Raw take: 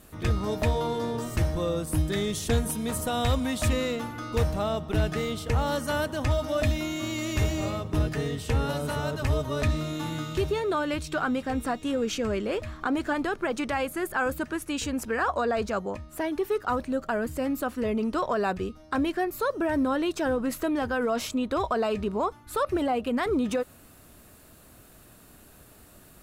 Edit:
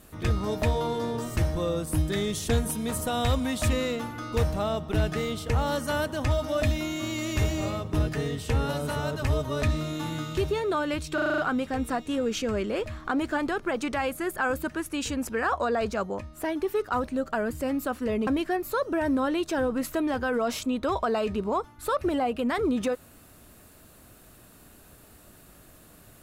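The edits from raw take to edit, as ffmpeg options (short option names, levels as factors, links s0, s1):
-filter_complex "[0:a]asplit=8[s0][s1][s2][s3][s4][s5][s6][s7];[s0]atrim=end=11.182[s8];[s1]atrim=start=11.138:end=11.182[s9];[s2]atrim=start=11.138:end=11.182[s10];[s3]atrim=start=11.138:end=11.182[s11];[s4]atrim=start=11.138:end=11.182[s12];[s5]atrim=start=11.138:end=11.182[s13];[s6]atrim=start=11.138:end=18.032[s14];[s7]atrim=start=18.948[s15];[s8][s9]acrossfade=d=0.004:c1=hsin:c2=hsin[s16];[s16][s10]acrossfade=d=0.004:c1=hsin:c2=hsin[s17];[s17][s11]acrossfade=d=0.004:c1=hsin:c2=hsin[s18];[s18][s12]acrossfade=d=0.004:c1=hsin:c2=hsin[s19];[s19][s13]acrossfade=d=0.004:c1=hsin:c2=hsin[s20];[s20][s14]acrossfade=d=0.004:c1=hsin:c2=hsin[s21];[s21][s15]acrossfade=d=0.004:c1=hsin:c2=hsin"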